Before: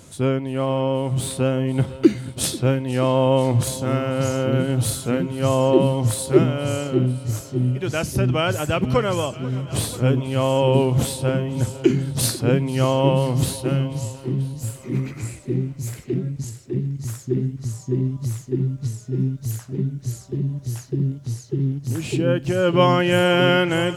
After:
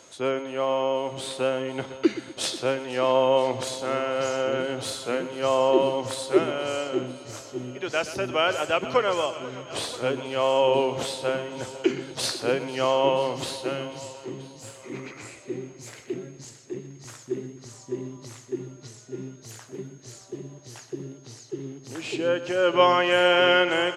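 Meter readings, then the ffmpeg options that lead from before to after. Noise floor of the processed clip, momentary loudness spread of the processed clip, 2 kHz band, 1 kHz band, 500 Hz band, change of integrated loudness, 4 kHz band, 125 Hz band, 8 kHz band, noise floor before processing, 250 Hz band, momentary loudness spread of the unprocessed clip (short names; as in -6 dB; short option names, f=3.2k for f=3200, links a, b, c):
-49 dBFS, 19 LU, 0.0 dB, 0.0 dB, -2.0 dB, -3.5 dB, 0.0 dB, -20.0 dB, -7.5 dB, -42 dBFS, -9.0 dB, 10 LU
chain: -filter_complex "[0:a]acrossover=split=360 6900:gain=0.0794 1 0.1[a][b][c];[a][b][c]amix=inputs=3:normalize=0,aeval=exprs='val(0)+0.00158*sin(2*PI*6500*n/s)':c=same,asplit=2[d][e];[e]aecho=0:1:123|246|369|492:0.2|0.0838|0.0352|0.0148[f];[d][f]amix=inputs=2:normalize=0"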